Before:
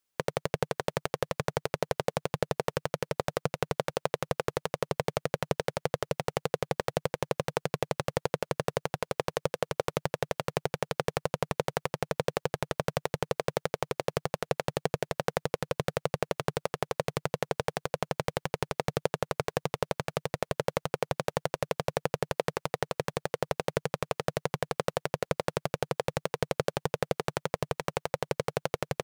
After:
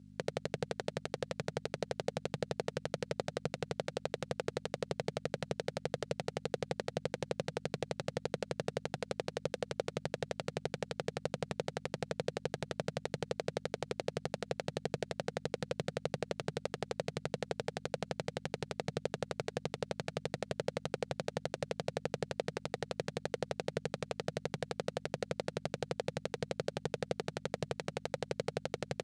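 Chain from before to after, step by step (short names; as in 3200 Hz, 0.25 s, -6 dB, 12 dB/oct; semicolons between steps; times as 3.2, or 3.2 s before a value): hum 50 Hz, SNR 18 dB; speaker cabinet 120–9200 Hz, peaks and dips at 210 Hz +4 dB, 1000 Hz -6 dB, 4100 Hz +4 dB; limiter -17.5 dBFS, peak gain reduction 9.5 dB; bell 1100 Hz -4 dB 0.49 oct; gain +1 dB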